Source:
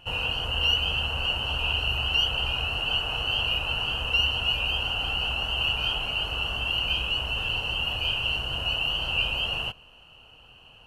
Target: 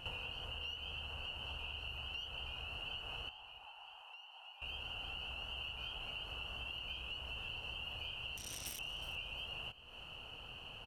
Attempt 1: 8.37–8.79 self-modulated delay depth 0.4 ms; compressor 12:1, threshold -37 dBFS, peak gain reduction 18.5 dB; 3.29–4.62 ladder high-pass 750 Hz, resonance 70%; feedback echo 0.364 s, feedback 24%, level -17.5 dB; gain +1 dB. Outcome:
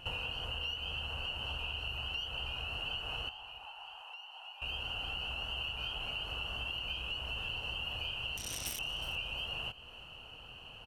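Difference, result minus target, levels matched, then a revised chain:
compressor: peak gain reduction -6 dB
8.37–8.79 self-modulated delay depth 0.4 ms; compressor 12:1, threshold -43.5 dBFS, peak gain reduction 24 dB; 3.29–4.62 ladder high-pass 750 Hz, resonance 70%; feedback echo 0.364 s, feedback 24%, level -17.5 dB; gain +1 dB

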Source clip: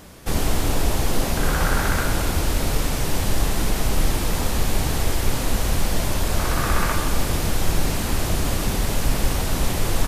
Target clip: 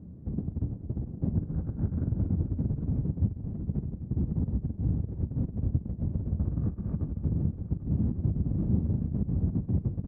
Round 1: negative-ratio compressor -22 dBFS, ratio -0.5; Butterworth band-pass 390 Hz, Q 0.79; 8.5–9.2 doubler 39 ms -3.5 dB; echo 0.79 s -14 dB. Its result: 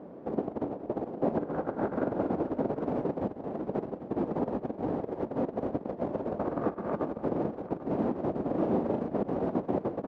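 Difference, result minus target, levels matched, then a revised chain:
500 Hz band +17.0 dB
negative-ratio compressor -22 dBFS, ratio -0.5; Butterworth band-pass 130 Hz, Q 0.79; 8.5–9.2 doubler 39 ms -3.5 dB; echo 0.79 s -14 dB

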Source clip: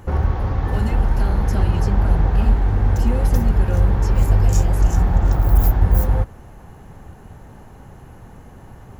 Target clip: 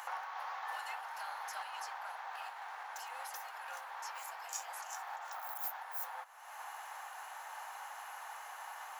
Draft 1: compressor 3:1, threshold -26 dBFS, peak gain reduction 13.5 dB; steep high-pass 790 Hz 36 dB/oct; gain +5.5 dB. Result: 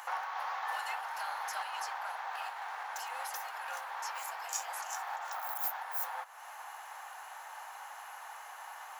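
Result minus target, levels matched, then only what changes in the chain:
compressor: peak gain reduction -5 dB
change: compressor 3:1, threshold -33.5 dBFS, peak gain reduction 18.5 dB

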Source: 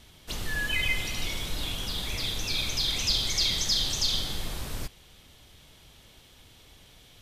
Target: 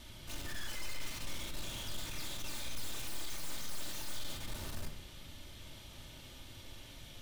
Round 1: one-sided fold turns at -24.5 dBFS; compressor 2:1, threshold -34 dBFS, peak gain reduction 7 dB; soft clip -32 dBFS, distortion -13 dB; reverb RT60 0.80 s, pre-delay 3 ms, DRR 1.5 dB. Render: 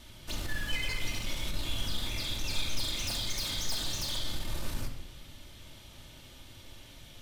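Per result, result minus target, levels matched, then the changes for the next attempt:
one-sided fold: distortion -14 dB; soft clip: distortion -9 dB
change: one-sided fold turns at -35 dBFS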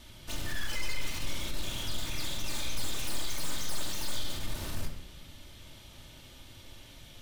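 soft clip: distortion -8 dB
change: soft clip -43.5 dBFS, distortion -4 dB

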